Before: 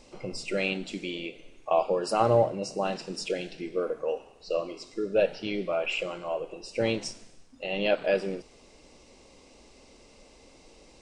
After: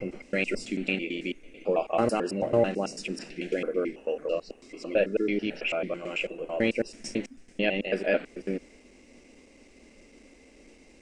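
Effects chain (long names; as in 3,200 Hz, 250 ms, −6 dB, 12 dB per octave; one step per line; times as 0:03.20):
slices reordered back to front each 110 ms, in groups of 3
graphic EQ with 10 bands 125 Hz −6 dB, 250 Hz +8 dB, 1,000 Hz −8 dB, 2,000 Hz +9 dB, 4,000 Hz −7 dB
downward expander −51 dBFS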